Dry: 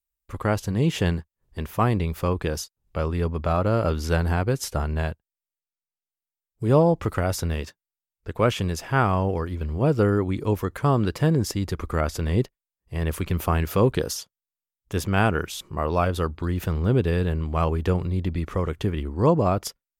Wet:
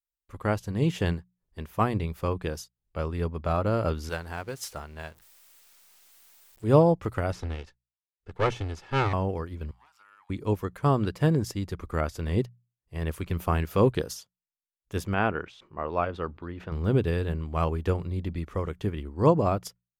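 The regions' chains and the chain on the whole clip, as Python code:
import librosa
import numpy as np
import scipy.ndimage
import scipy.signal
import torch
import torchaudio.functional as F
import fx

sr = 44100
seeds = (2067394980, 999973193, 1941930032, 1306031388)

y = fx.chain(x, sr, fx.zero_step(step_db=-36.5),
    fx.low_shelf(hz=450.0, db=-10.5), at=(4.09, 6.64))
y = fx.chain(y, sr, fx.lower_of_two(delay_ms=2.3),
    fx.lowpass(hz=5900.0, slope=12), at=(7.32, 9.13))
y = fx.chain(y, sr, fx.level_steps(step_db=16),
    fx.steep_highpass(hz=810.0, slope=72),
    fx.doppler_dist(depth_ms=0.13), at=(9.71, 10.3))
y = fx.chain(y, sr, fx.lowpass(hz=2800.0, slope=12),
    fx.low_shelf(hz=130.0, db=-10.5),
    fx.sustainer(db_per_s=140.0), at=(15.14, 16.72))
y = fx.hum_notches(y, sr, base_hz=60, count=3)
y = fx.upward_expand(y, sr, threshold_db=-35.0, expansion=1.5)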